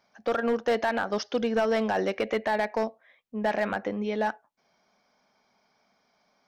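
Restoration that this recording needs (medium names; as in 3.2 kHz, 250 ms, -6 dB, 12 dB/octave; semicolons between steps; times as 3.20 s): clip repair -18.5 dBFS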